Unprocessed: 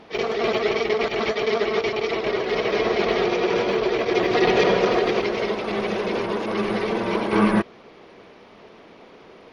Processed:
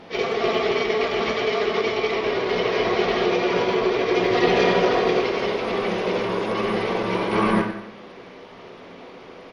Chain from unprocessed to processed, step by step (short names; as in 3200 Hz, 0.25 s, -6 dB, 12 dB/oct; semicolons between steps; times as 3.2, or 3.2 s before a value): in parallel at 0 dB: compressor, threshold -32 dBFS, peak gain reduction 17.5 dB; on the sum: speakerphone echo 90 ms, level -14 dB; reverb RT60 0.85 s, pre-delay 4 ms, DRR 0.5 dB; gain -4 dB